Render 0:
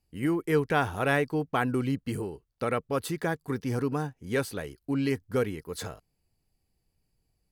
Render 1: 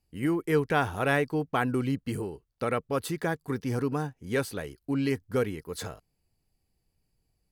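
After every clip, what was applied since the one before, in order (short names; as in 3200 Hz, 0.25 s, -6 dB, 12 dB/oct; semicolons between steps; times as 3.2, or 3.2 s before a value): nothing audible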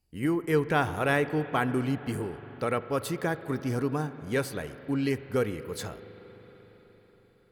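reverb RT60 5.0 s, pre-delay 38 ms, DRR 12 dB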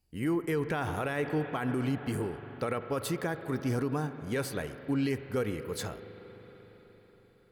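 limiter -22 dBFS, peak gain reduction 10.5 dB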